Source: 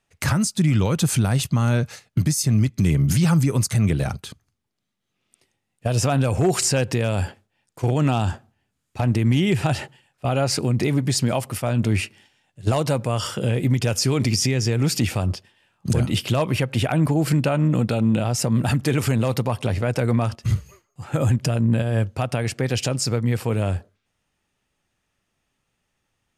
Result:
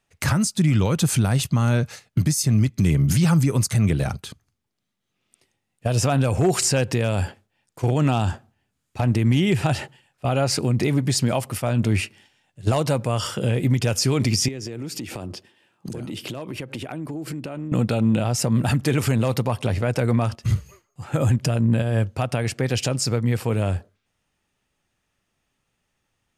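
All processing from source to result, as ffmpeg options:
-filter_complex "[0:a]asettb=1/sr,asplit=3[a][b][c];[a]atrim=end=14.484[d];[b]atrim=start=14.48:end=17.72,asetpts=PTS-STARTPTS,afade=t=in:d=0.004:c=qsin,afade=t=out:st=3.236:d=0.004:c=qsin,highpass=120,equalizer=f=330:w=1.6:g=8,acompressor=threshold=-28dB:ratio=8:attack=3.2:release=140:knee=1:detection=peak[e];[c]atrim=start=17.716[f];[d][e]acrossfade=d=0.004:c1=hsin:c2=qsin[g];[g][f]acrossfade=d=0.004:c1=qsin:c2=hsin"

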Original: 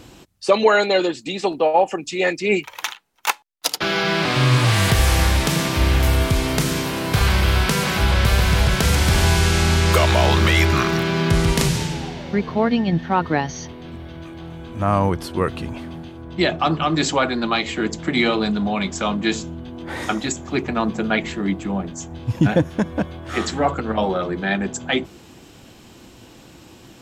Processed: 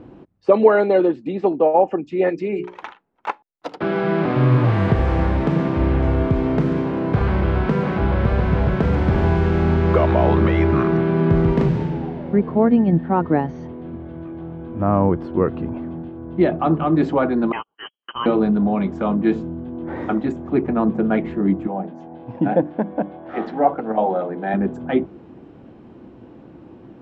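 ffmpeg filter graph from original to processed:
-filter_complex "[0:a]asettb=1/sr,asplit=3[a][b][c];[a]atrim=end=2.294[d];[b]atrim=start=2.29:end=2.84,asetpts=PTS-STARTPTS,afade=t=in:d=0.004:c=qsin,afade=t=out:st=0.546:d=0.004:c=qsin,equalizer=f=7.9k:w=0.47:g=8.5,bandreject=f=60:t=h:w=6,bandreject=f=120:t=h:w=6,bandreject=f=180:t=h:w=6,bandreject=f=240:t=h:w=6,bandreject=f=300:t=h:w=6,bandreject=f=360:t=h:w=6,bandreject=f=420:t=h:w=6,bandreject=f=480:t=h:w=6,acompressor=threshold=-21dB:ratio=5:attack=3.2:release=140:knee=1:detection=peak[e];[c]atrim=start=2.836[f];[d][e]acrossfade=d=0.004:c1=hsin:c2=qsin[g];[g][f]acrossfade=d=0.004:c1=qsin:c2=hsin,asettb=1/sr,asplit=3[h][i][j];[h]atrim=end=17.524[k];[i]atrim=start=17.52:end=18.26,asetpts=PTS-STARTPTS,afade=t=in:d=0.004:c=qsin,afade=t=out:st=0.736:d=0.004:c=qsin,agate=range=-46dB:threshold=-22dB:ratio=16:release=100:detection=peak,lowpass=f=2.8k:t=q:w=0.5098,lowpass=f=2.8k:t=q:w=0.6013,lowpass=f=2.8k:t=q:w=0.9,lowpass=f=2.8k:t=q:w=2.563,afreqshift=-3300[l];[j]atrim=start=18.256[m];[k][l]acrossfade=d=0.004:c1=hsin:c2=qsin[n];[n][m]acrossfade=d=0.004:c1=qsin:c2=hsin,asettb=1/sr,asplit=3[o][p][q];[o]atrim=end=21.674[r];[p]atrim=start=21.67:end=24.54,asetpts=PTS-STARTPTS,afade=t=in:d=0.004:c=qsin,afade=t=out:st=2.866:d=0.004:c=qsin,highpass=260,equalizer=f=370:t=q:w=4:g=-6,equalizer=f=770:t=q:w=4:g=7,equalizer=f=1.2k:t=q:w=4:g=-5,lowpass=f=5.4k:w=0.5412,lowpass=f=5.4k:w=1.3066,bandreject=f=50:t=h:w=6,bandreject=f=100:t=h:w=6,bandreject=f=150:t=h:w=6,bandreject=f=200:t=h:w=6,bandreject=f=250:t=h:w=6,bandreject=f=300:t=h:w=6,bandreject=f=350:t=h:w=6[s];[q]atrim=start=24.536[t];[r][s]acrossfade=d=0.004:c1=hsin:c2=qsin[u];[u][t]acrossfade=d=0.004:c1=qsin:c2=hsin,lowpass=1.6k,equalizer=f=290:t=o:w=2.9:g=10.5,volume=-5.5dB"

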